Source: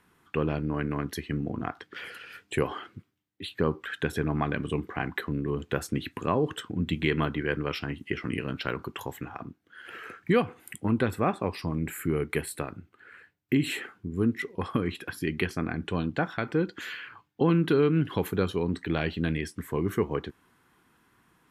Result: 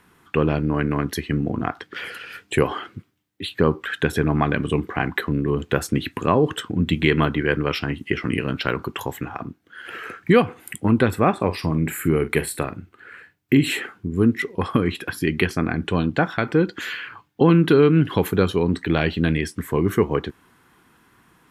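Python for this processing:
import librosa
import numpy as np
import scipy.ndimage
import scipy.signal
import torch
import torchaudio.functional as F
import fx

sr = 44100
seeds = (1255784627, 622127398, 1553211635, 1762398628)

y = fx.doubler(x, sr, ms=44.0, db=-13, at=(11.33, 13.61))
y = F.gain(torch.from_numpy(y), 8.0).numpy()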